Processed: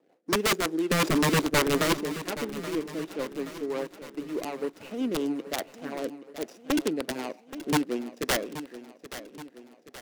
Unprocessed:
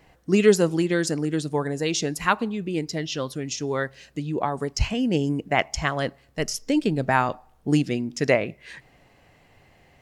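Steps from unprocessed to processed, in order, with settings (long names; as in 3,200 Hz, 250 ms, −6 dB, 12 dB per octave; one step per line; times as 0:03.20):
running median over 41 samples
high-pass filter 270 Hz 24 dB per octave
0:00.91–0:01.94: leveller curve on the samples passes 3
wrap-around overflow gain 17 dB
rotating-speaker cabinet horn 5.5 Hz
repeating echo 826 ms, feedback 53%, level −13.5 dB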